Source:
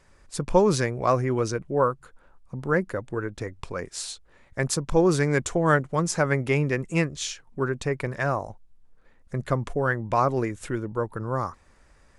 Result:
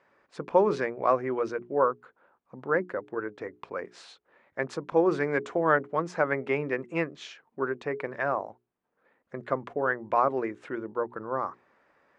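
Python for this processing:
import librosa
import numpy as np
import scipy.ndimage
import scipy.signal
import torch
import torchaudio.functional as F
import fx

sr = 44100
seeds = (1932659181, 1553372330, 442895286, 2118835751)

y = fx.bandpass_edges(x, sr, low_hz=300.0, high_hz=2200.0)
y = fx.hum_notches(y, sr, base_hz=60, count=7)
y = F.gain(torch.from_numpy(y), -1.0).numpy()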